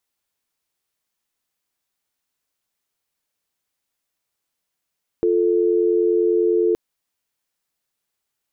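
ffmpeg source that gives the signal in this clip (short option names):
-f lavfi -i "aevalsrc='0.133*(sin(2*PI*350*t)+sin(2*PI*440*t))':d=1.52:s=44100"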